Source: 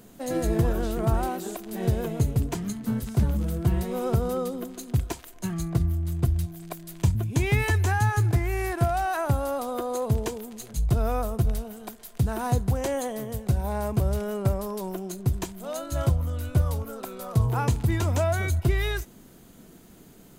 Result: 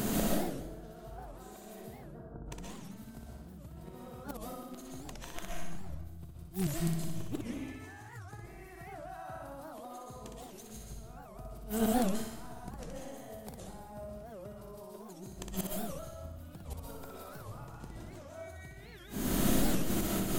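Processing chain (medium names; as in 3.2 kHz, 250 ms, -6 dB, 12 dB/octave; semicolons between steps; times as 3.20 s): band-stop 490 Hz, Q 12; compression 20:1, threshold -41 dBFS, peak gain reduction 25.5 dB; inverted gate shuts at -39 dBFS, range -25 dB; 1.84–2.46 s: brick-wall FIR low-pass 1.7 kHz; flutter echo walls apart 10.5 m, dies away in 0.77 s; algorithmic reverb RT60 0.69 s, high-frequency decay 0.85×, pre-delay 95 ms, DRR -2 dB; warped record 78 rpm, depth 250 cents; trim +17.5 dB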